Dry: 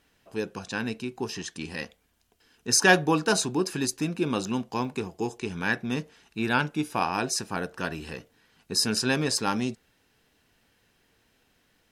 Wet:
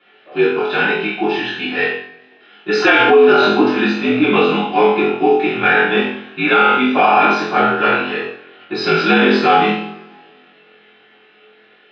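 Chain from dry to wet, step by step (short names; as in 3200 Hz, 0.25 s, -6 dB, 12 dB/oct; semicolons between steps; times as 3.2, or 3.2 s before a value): notch 1000 Hz, Q 11; flutter echo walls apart 3.9 m, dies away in 0.43 s; two-slope reverb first 0.49 s, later 2.1 s, from -26 dB, DRR -9 dB; mistuned SSB -54 Hz 340–3400 Hz; maximiser +9.5 dB; gain -1.5 dB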